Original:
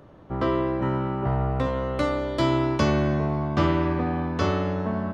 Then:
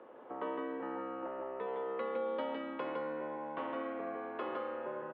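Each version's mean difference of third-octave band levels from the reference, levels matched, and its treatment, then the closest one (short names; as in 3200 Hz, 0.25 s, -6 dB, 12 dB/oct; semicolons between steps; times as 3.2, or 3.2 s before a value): 7.5 dB: high shelf 2400 Hz -9.5 dB; compressor 3:1, threshold -37 dBFS, peak gain reduction 14 dB; echo 0.16 s -3.5 dB; mistuned SSB -61 Hz 430–3300 Hz; gain +1 dB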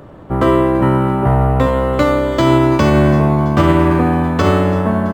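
2.5 dB: on a send: feedback echo 0.333 s, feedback 56%, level -18 dB; on the sum: maximiser +13 dB; decimation joined by straight lines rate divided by 4×; gain -1 dB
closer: second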